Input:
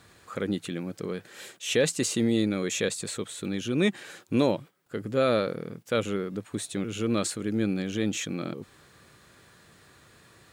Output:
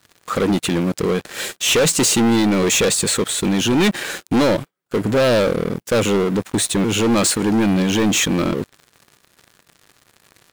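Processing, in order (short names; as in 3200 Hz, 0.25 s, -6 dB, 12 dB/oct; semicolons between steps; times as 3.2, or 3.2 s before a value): low shelf 64 Hz -10 dB; sample leveller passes 5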